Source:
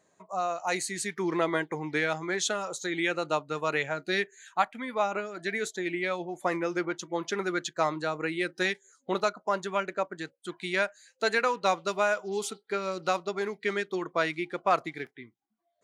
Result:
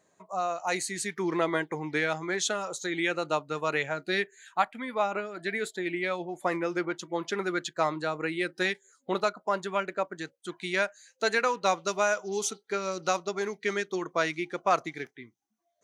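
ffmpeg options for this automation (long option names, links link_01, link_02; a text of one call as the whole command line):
ffmpeg -i in.wav -af "asetnsamples=nb_out_samples=441:pad=0,asendcmd='4.04 equalizer g -6.5;5.13 equalizer g -14;5.97 equalizer g -4;10.08 equalizer g 6;11.83 equalizer g 13',equalizer=frequency=6100:width_type=o:width=0.25:gain=0.5" out.wav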